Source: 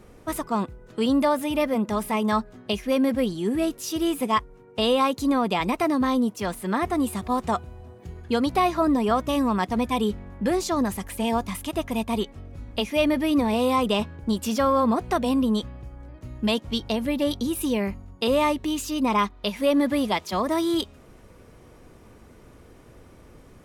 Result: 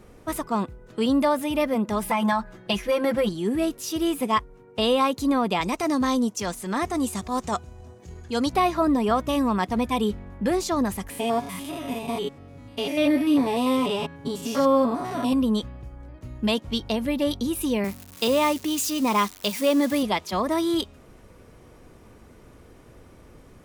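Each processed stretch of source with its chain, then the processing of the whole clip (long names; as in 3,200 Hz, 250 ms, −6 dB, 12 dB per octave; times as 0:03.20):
0:02.02–0:03.29: comb filter 5.9 ms, depth 94% + dynamic equaliser 1,300 Hz, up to +7 dB, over −36 dBFS, Q 0.88 + downward compressor, threshold −18 dBFS
0:05.61–0:08.53: parametric band 6,500 Hz +12 dB 0.93 octaves + transient designer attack −7 dB, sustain −3 dB
0:11.10–0:15.33: spectrum averaged block by block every 100 ms + high-pass filter 100 Hz + comb filter 7.1 ms, depth 73%
0:17.84–0:20.03: spike at every zero crossing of −27 dBFS + high-pass filter 110 Hz + dynamic equaliser 5,600 Hz, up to +4 dB, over −42 dBFS, Q 1
whole clip: no processing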